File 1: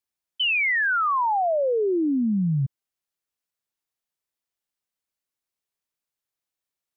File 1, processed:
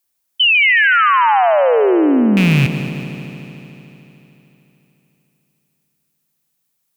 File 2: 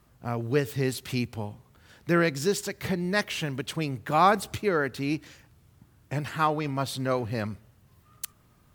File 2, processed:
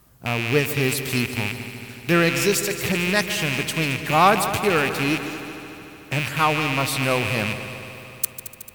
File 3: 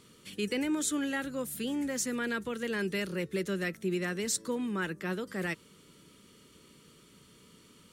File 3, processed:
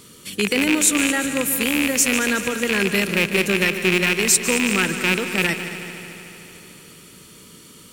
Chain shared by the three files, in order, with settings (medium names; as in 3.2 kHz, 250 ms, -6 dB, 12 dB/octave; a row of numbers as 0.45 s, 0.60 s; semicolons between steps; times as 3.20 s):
rattle on loud lows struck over -37 dBFS, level -19 dBFS; treble shelf 7.5 kHz +11 dB; multi-head delay 74 ms, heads second and third, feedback 69%, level -13 dB; peak normalisation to -2 dBFS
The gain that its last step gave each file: +9.5 dB, +4.0 dB, +10.5 dB